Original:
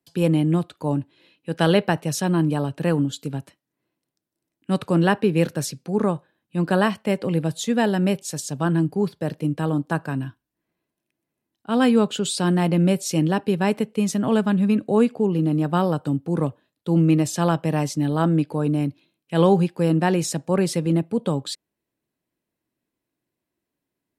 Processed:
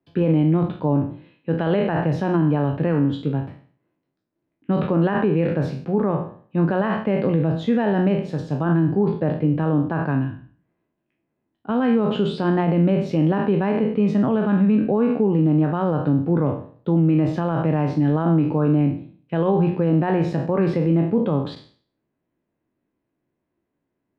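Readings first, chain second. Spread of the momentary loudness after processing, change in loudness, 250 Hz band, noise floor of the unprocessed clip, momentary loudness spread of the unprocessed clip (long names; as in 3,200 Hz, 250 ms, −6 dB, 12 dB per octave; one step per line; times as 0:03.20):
7 LU, +1.5 dB, +1.5 dB, −84 dBFS, 9 LU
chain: peak hold with a decay on every bin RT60 0.48 s
high-shelf EQ 3,400 Hz −10.5 dB
mains-hum notches 60/120/180 Hz
brickwall limiter −16 dBFS, peak gain reduction 11.5 dB
high-frequency loss of the air 360 metres
level +5.5 dB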